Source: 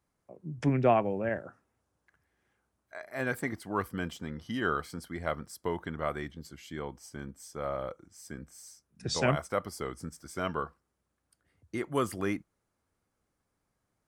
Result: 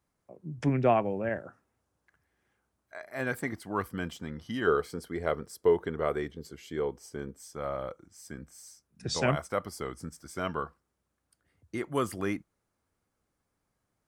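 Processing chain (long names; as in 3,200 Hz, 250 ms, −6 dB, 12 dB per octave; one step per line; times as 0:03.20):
0:04.67–0:07.39: parametric band 430 Hz +12.5 dB 0.5 octaves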